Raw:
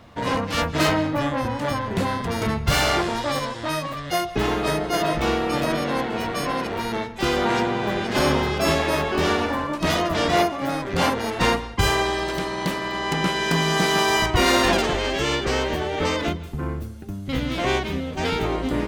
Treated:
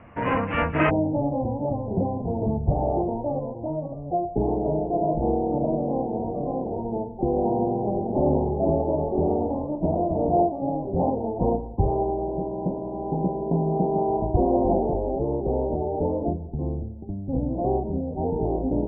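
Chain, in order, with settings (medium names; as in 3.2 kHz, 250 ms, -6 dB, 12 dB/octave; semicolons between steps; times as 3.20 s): steep low-pass 2.7 kHz 72 dB/octave, from 0.89 s 850 Hz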